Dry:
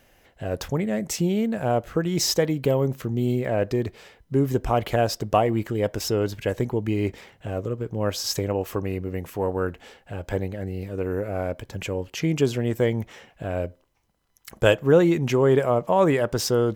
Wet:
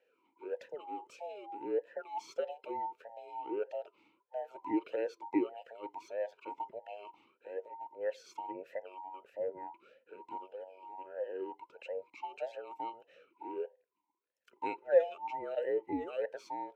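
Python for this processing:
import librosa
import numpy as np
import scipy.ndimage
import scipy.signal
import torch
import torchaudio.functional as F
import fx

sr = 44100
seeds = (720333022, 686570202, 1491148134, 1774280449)

y = fx.band_invert(x, sr, width_hz=1000)
y = fx.vowel_sweep(y, sr, vowels='e-u', hz=1.6)
y = y * 10.0 ** (-4.5 / 20.0)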